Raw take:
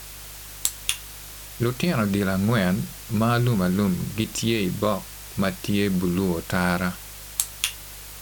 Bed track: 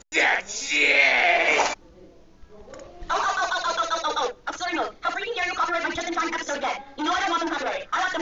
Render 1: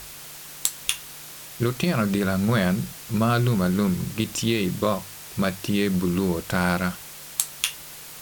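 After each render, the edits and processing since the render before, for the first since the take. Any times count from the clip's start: de-hum 50 Hz, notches 2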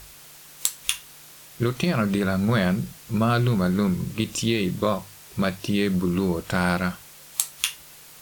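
noise print and reduce 6 dB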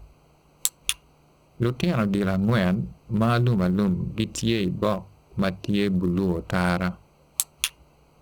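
local Wiener filter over 25 samples; peaking EQ 62 Hz +10 dB 0.46 oct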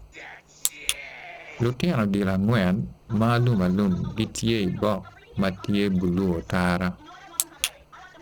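add bed track -21.5 dB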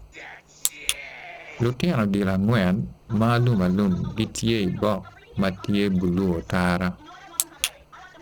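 trim +1 dB

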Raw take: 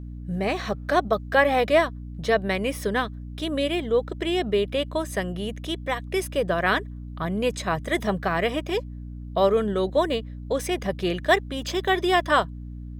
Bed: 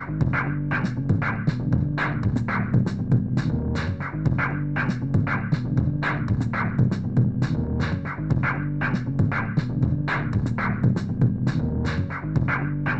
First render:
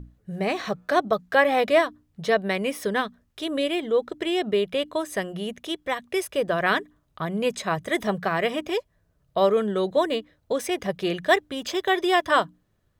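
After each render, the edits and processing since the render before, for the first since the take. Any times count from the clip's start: hum notches 60/120/180/240/300 Hz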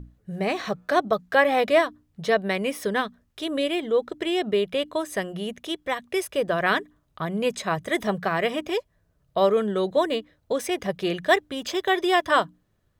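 no audible change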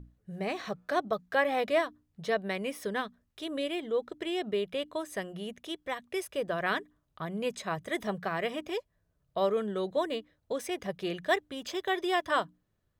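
trim -8 dB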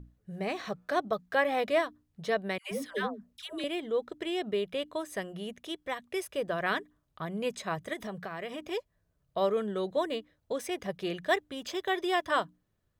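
2.58–3.64 s: phase dispersion lows, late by 137 ms, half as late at 760 Hz; 7.93–8.71 s: compression 4:1, threshold -35 dBFS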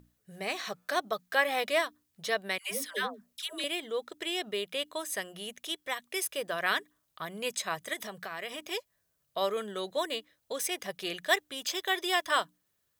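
tilt EQ +3.5 dB/octave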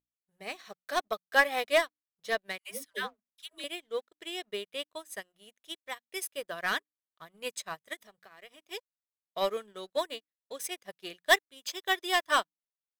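waveshaping leveller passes 2; upward expansion 2.5:1, over -38 dBFS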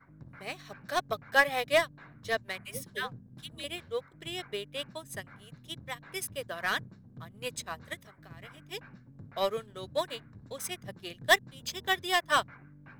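add bed -28 dB

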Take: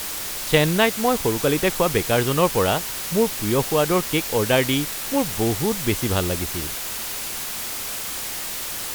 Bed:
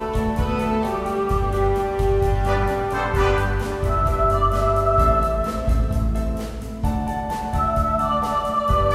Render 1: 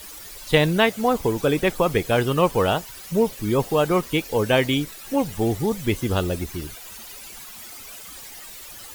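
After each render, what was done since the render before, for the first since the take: noise reduction 14 dB, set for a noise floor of -30 dBFS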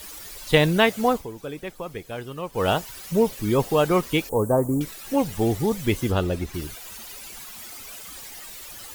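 1.09–2.69 s: dip -13.5 dB, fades 0.17 s; 4.29–4.81 s: elliptic band-stop 1.1–8 kHz, stop band 80 dB; 6.10–6.53 s: treble shelf 4.1 kHz -> 6.8 kHz -9.5 dB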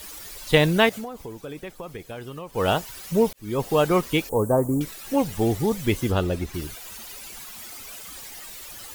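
0.89–2.52 s: compression 10:1, threshold -30 dBFS; 3.33–3.75 s: fade in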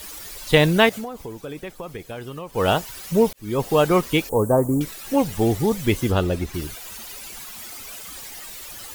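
trim +2.5 dB; peak limiter -1 dBFS, peak gain reduction 1 dB

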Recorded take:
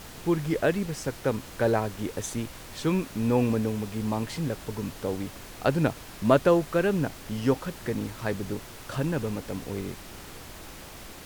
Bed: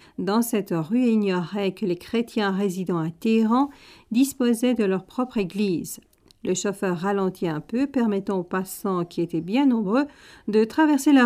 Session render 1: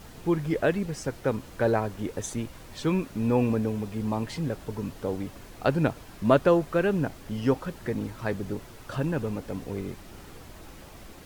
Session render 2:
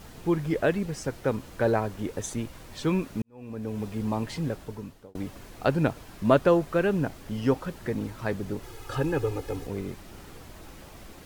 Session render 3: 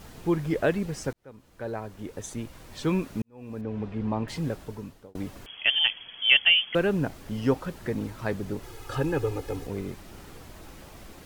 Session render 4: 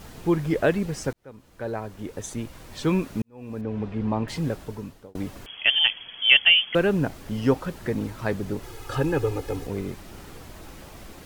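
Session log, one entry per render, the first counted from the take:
noise reduction 7 dB, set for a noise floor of -44 dBFS
3.22–3.83 s: fade in quadratic; 4.49–5.15 s: fade out; 8.63–9.67 s: comb 2.4 ms, depth 96%
1.13–2.92 s: fade in; 3.61–4.28 s: low-pass 2.7 kHz; 5.46–6.75 s: frequency inversion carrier 3.3 kHz
trim +3 dB

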